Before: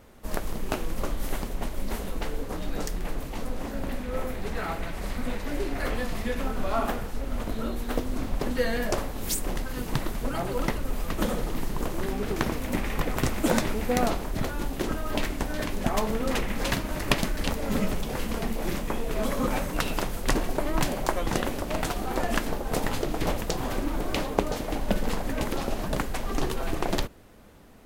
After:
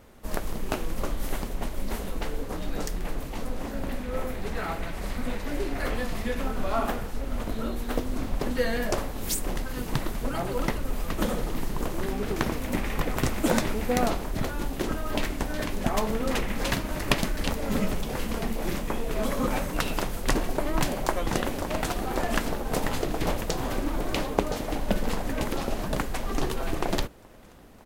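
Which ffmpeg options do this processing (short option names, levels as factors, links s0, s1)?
-filter_complex "[0:a]asplit=2[s0][s1];[s1]afade=t=in:st=20.97:d=0.01,afade=t=out:st=22.07:d=0.01,aecho=0:1:560|1120|1680|2240|2800|3360|3920|4480|5040|5600|6160|6720:0.251189|0.200951|0.160761|0.128609|0.102887|0.0823095|0.0658476|0.0526781|0.0421425|0.033714|0.0269712|0.0215769[s2];[s0][s2]amix=inputs=2:normalize=0"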